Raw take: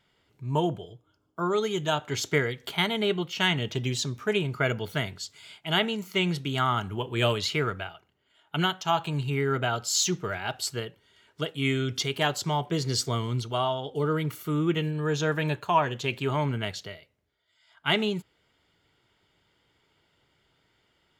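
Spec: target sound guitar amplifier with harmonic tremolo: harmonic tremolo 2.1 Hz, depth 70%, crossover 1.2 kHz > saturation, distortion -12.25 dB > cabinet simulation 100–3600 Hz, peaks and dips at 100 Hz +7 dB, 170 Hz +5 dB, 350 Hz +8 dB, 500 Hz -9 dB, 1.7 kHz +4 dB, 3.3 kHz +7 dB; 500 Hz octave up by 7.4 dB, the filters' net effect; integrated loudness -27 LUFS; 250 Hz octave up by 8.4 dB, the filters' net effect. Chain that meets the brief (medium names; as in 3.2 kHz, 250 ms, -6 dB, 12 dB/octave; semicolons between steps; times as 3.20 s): peaking EQ 250 Hz +3.5 dB; peaking EQ 500 Hz +8.5 dB; harmonic tremolo 2.1 Hz, depth 70%, crossover 1.2 kHz; saturation -19.5 dBFS; cabinet simulation 100–3600 Hz, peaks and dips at 100 Hz +7 dB, 170 Hz +5 dB, 350 Hz +8 dB, 500 Hz -9 dB, 1.7 kHz +4 dB, 3.3 kHz +7 dB; trim +1 dB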